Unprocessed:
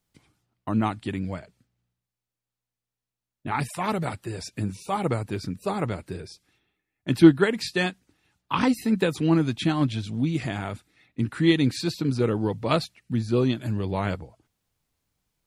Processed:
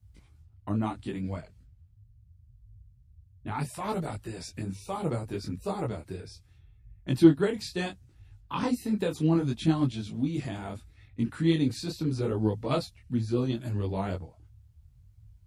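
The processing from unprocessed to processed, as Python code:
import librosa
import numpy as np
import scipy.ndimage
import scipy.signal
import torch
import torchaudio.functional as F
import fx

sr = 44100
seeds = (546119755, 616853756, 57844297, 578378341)

y = fx.dmg_noise_band(x, sr, seeds[0], low_hz=37.0, high_hz=110.0, level_db=-51.0)
y = fx.dynamic_eq(y, sr, hz=2000.0, q=0.77, threshold_db=-42.0, ratio=4.0, max_db=-7)
y = fx.detune_double(y, sr, cents=25)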